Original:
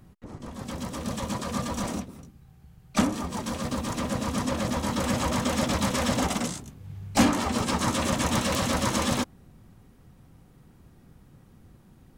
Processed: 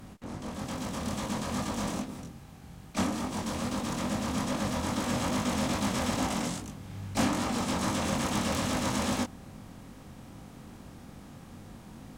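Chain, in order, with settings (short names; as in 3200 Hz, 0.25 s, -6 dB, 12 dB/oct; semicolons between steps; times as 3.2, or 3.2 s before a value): per-bin compression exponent 0.6; chorus 2.4 Hz, delay 19 ms, depth 5 ms; gain -5 dB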